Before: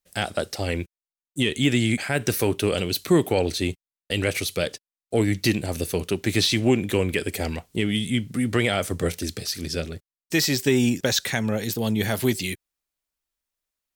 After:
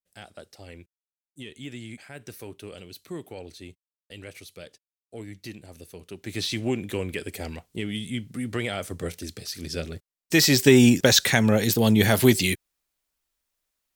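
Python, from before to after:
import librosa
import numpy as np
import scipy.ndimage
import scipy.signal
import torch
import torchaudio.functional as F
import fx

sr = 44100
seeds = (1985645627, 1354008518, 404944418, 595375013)

y = fx.gain(x, sr, db=fx.line((6.0, -18.0), (6.48, -7.0), (9.38, -7.0), (10.62, 5.0)))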